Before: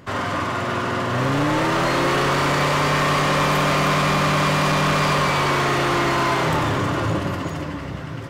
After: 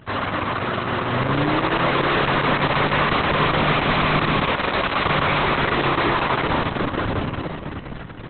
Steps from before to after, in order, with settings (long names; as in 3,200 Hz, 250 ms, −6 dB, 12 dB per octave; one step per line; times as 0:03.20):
0:04.43–0:05.05: mains-hum notches 50/100/150/200/250/300/350/400/450 Hz
Opus 6 kbit/s 48,000 Hz